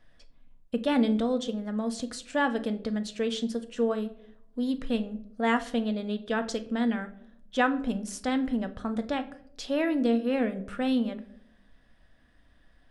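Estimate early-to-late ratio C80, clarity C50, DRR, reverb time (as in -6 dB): 19.0 dB, 15.0 dB, 8.0 dB, 0.70 s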